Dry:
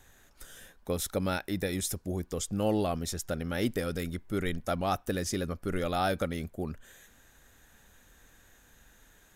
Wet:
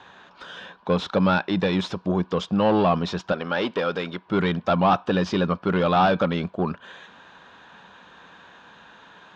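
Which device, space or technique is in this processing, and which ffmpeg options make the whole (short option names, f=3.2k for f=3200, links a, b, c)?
overdrive pedal into a guitar cabinet: -filter_complex "[0:a]asplit=2[a][b];[b]highpass=f=720:p=1,volume=19dB,asoftclip=type=tanh:threshold=-15.5dB[c];[a][c]amix=inputs=2:normalize=0,lowpass=f=5.2k:p=1,volume=-6dB,highpass=91,equalizer=f=180:t=q:w=4:g=10,equalizer=f=1k:t=q:w=4:g=9,equalizer=f=2k:t=q:w=4:g=-9,lowpass=f=3.9k:w=0.5412,lowpass=f=3.9k:w=1.3066,asettb=1/sr,asplit=3[d][e][f];[d]atrim=end=3.324[g];[e]atrim=start=3.32:end=4.26,asetpts=PTS-STARTPTS,afade=t=in:d=0.004:c=qsin,afade=t=out:st=0.936:d=0.004:c=qsin,bass=f=250:g=-13,treble=f=4k:g=-1[h];[f]atrim=start=4.256[i];[g][h]acrossfade=d=0.004:c1=hsin:c2=qsin[j];[j][i]acrossfade=d=0.004:c1=qsin:c2=hsin,volume=3.5dB"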